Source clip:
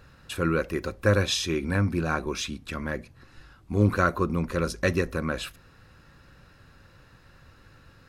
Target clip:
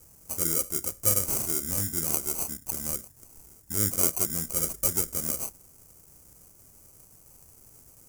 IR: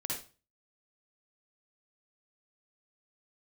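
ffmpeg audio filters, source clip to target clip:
-filter_complex "[0:a]asplit=2[link_01][link_02];[link_02]acompressor=threshold=-32dB:ratio=6,volume=-0.5dB[link_03];[link_01][link_03]amix=inputs=2:normalize=0,acrusher=samples=25:mix=1:aa=0.000001,aexciter=amount=13.5:drive=6.8:freq=5700,volume=-13dB"

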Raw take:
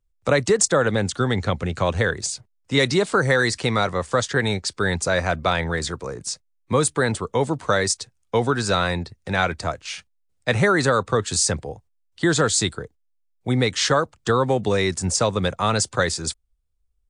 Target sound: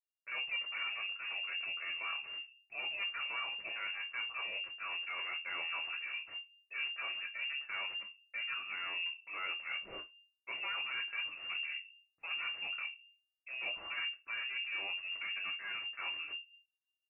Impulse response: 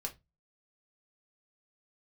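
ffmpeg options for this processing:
-filter_complex "[0:a]agate=range=-33dB:threshold=-49dB:ratio=3:detection=peak,areverse,acompressor=threshold=-33dB:ratio=6,areverse,aeval=exprs='clip(val(0),-1,0.0133)':channel_layout=same[link_01];[1:a]atrim=start_sample=2205[link_02];[link_01][link_02]afir=irnorm=-1:irlink=0,lowpass=frequency=2400:width_type=q:width=0.5098,lowpass=frequency=2400:width_type=q:width=0.6013,lowpass=frequency=2400:width_type=q:width=0.9,lowpass=frequency=2400:width_type=q:width=2.563,afreqshift=-2800,volume=-4.5dB"

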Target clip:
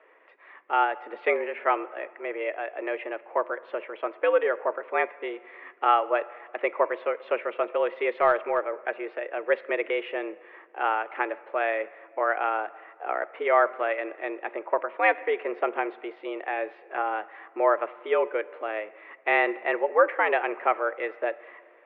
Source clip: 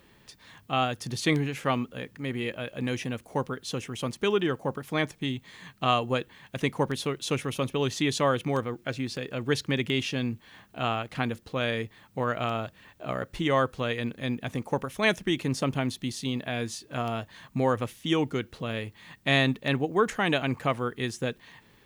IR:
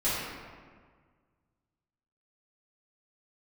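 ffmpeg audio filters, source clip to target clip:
-filter_complex "[0:a]highpass=frequency=320:width_type=q:width=0.5412,highpass=frequency=320:width_type=q:width=1.307,lowpass=frequency=2200:width_type=q:width=0.5176,lowpass=frequency=2200:width_type=q:width=0.7071,lowpass=frequency=2200:width_type=q:width=1.932,afreqshift=100,asplit=2[link_01][link_02];[1:a]atrim=start_sample=2205[link_03];[link_02][link_03]afir=irnorm=-1:irlink=0,volume=-27dB[link_04];[link_01][link_04]amix=inputs=2:normalize=0,asettb=1/sr,asplit=3[link_05][link_06][link_07];[link_05]atrim=end=8.114[link_08];[link_06]atrim=start=8.11:end=8.73,asetpts=PTS-STARTPTS,afade=type=in:duration=0.004:curve=qsin,afade=type=out:start_time=0.616:duration=0.004:curve=qsin,aeval=exprs='0.224*(cos(1*acos(clip(val(0)/0.224,-1,1)))-cos(1*PI/2))+0.00708*(cos(2*acos(clip(val(0)/0.224,-1,1)))-cos(2*PI/2))+0.00708*(cos(3*acos(clip(val(0)/0.224,-1,1)))-cos(3*PI/2))':channel_layout=same[link_09];[link_07]atrim=start=8.726[link_10];[link_08][link_09]acrossfade=duration=0.004:curve1=hsin:curve2=qsin[link_11];[link_11][link_10]acrossfade=duration=0.004:curve1=qsin:curve2=hsin,volume=4dB"

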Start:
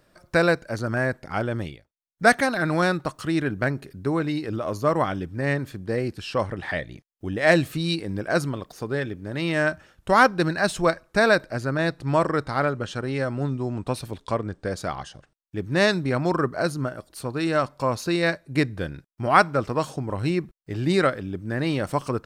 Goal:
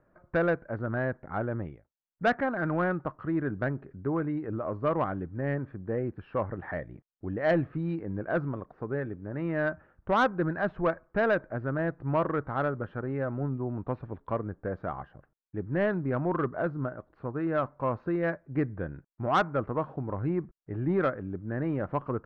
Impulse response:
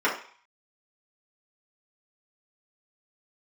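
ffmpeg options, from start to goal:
-af "lowpass=frequency=1600:width=0.5412,lowpass=frequency=1600:width=1.3066,asoftclip=type=tanh:threshold=-12dB,volume=-4.5dB"

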